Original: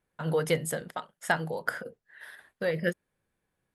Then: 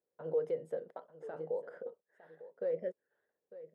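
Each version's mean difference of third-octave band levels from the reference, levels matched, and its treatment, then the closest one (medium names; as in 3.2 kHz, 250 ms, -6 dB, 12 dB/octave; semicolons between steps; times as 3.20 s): 10.0 dB: peak limiter -22 dBFS, peak gain reduction 11 dB; band-pass filter 480 Hz, Q 3.5; delay 901 ms -15.5 dB; warped record 33 1/3 rpm, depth 100 cents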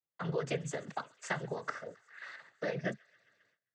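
6.5 dB: compression 2:1, threshold -37 dBFS, peak gain reduction 9.5 dB; on a send: feedback echo behind a high-pass 133 ms, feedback 81%, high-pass 1.5 kHz, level -23 dB; on the sum: noise-vocoded speech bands 16; gate with hold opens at -59 dBFS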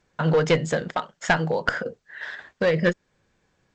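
3.5 dB: treble shelf 4.6 kHz -2 dB; in parallel at 0 dB: compression 8:1, threshold -36 dBFS, peak gain reduction 15.5 dB; on the sum: one-sided clip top -22.5 dBFS, bottom -12.5 dBFS; trim +6.5 dB; G.722 64 kbps 16 kHz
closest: third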